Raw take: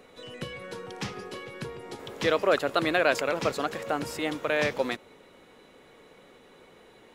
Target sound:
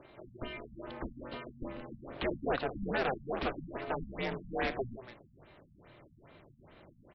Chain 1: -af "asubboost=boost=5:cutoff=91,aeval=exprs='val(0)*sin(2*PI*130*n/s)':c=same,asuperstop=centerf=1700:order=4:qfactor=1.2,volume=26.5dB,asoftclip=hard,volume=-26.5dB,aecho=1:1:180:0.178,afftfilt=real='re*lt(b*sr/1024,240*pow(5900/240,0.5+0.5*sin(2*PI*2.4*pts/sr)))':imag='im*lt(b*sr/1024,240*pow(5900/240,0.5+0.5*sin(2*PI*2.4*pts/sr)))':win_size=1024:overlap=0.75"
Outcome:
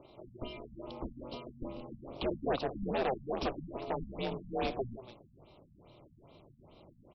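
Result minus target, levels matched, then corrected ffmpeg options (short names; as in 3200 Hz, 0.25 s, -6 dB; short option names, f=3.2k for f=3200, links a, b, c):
2000 Hz band -7.0 dB
-af "asubboost=boost=5:cutoff=91,aeval=exprs='val(0)*sin(2*PI*130*n/s)':c=same,asuperstop=centerf=6300:order=4:qfactor=1.2,volume=26.5dB,asoftclip=hard,volume=-26.5dB,aecho=1:1:180:0.178,afftfilt=real='re*lt(b*sr/1024,240*pow(5900/240,0.5+0.5*sin(2*PI*2.4*pts/sr)))':imag='im*lt(b*sr/1024,240*pow(5900/240,0.5+0.5*sin(2*PI*2.4*pts/sr)))':win_size=1024:overlap=0.75"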